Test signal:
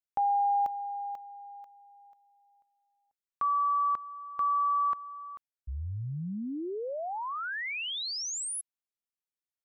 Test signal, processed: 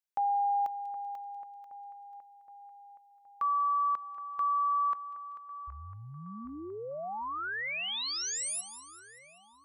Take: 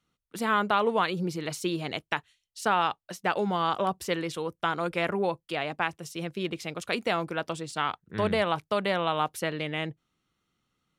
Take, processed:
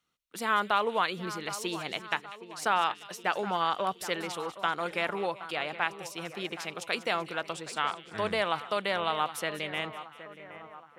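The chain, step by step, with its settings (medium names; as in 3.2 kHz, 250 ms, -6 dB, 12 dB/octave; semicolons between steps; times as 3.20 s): bass shelf 400 Hz -11 dB; on a send: two-band feedback delay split 2.3 kHz, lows 770 ms, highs 193 ms, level -13.5 dB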